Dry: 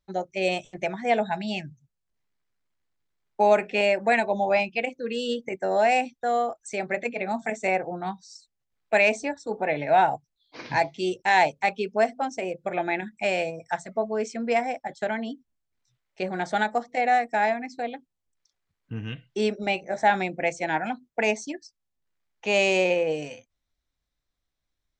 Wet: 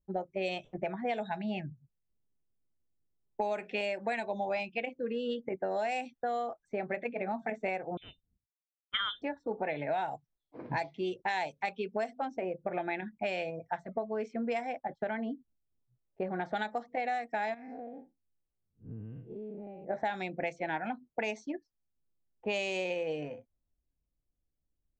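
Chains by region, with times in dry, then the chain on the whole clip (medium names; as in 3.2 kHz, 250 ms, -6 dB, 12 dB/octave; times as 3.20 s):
7.97–9.22 s: expander -46 dBFS + frequency inversion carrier 3.8 kHz + treble shelf 2.6 kHz -8.5 dB
17.54–19.85 s: spectral blur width 133 ms + compression 12:1, threshold -38 dBFS
whole clip: level-controlled noise filter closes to 430 Hz, open at -17.5 dBFS; dynamic bell 3.5 kHz, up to +4 dB, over -45 dBFS, Q 2.7; compression 6:1, threshold -31 dBFS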